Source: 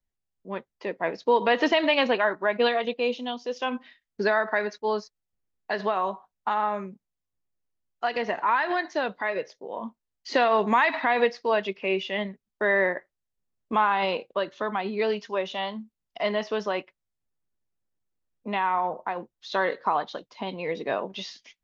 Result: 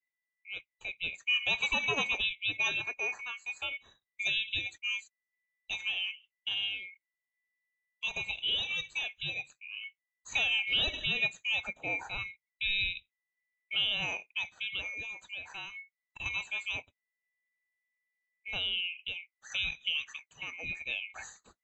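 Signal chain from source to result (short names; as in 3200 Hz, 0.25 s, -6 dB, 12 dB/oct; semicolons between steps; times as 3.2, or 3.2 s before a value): band-swap scrambler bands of 2000 Hz; 14.93–16.26 compressor 6:1, threshold -30 dBFS, peak gain reduction 8.5 dB; gain -8.5 dB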